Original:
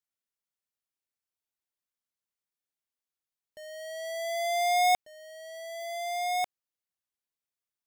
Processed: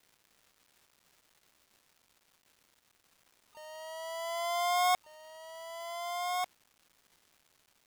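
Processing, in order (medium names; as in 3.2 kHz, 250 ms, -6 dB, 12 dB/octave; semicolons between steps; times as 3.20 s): harmony voices +7 st -5 dB, +12 st -16 dB; crackle 600 per s -48 dBFS; trim -5.5 dB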